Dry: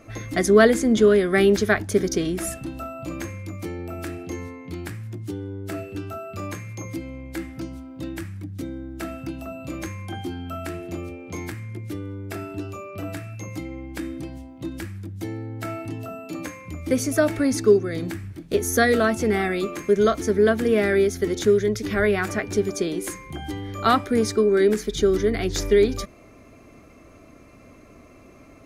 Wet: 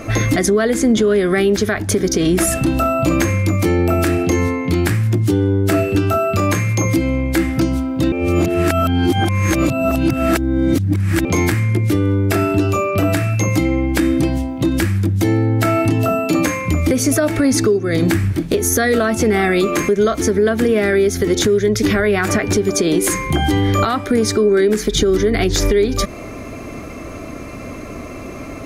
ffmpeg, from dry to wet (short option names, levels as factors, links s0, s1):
-filter_complex "[0:a]asplit=3[s0][s1][s2];[s0]atrim=end=8.122[s3];[s1]atrim=start=8.118:end=11.252,asetpts=PTS-STARTPTS,areverse[s4];[s2]atrim=start=11.248[s5];[s3][s4]acrossfade=d=0.004:c1=hsin:c2=hsin[s6];[s6][s5]acrossfade=d=0.004:c1=hsin:c2=hsin,acompressor=threshold=0.0398:ratio=12,alimiter=level_in=15.8:limit=0.891:release=50:level=0:latency=1,volume=0.531"